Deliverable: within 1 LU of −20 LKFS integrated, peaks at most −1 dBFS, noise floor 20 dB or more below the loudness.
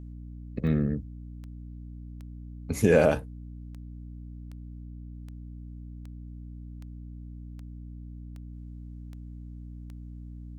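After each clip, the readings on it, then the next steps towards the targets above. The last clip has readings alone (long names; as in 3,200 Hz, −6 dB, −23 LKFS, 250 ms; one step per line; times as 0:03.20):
number of clicks 13; mains hum 60 Hz; hum harmonics up to 300 Hz; level of the hum −39 dBFS; integrated loudness −26.0 LKFS; sample peak −8.5 dBFS; target loudness −20.0 LKFS
→ click removal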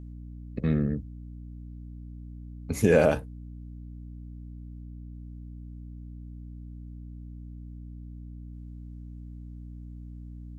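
number of clicks 0; mains hum 60 Hz; hum harmonics up to 300 Hz; level of the hum −39 dBFS
→ hum removal 60 Hz, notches 5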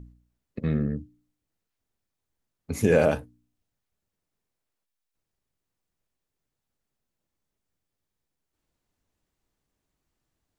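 mains hum none found; integrated loudness −26.0 LKFS; sample peak −8.5 dBFS; target loudness −20.0 LKFS
→ level +6 dB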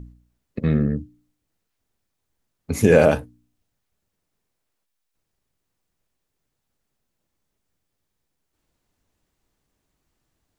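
integrated loudness −20.0 LKFS; sample peak −2.5 dBFS; background noise floor −78 dBFS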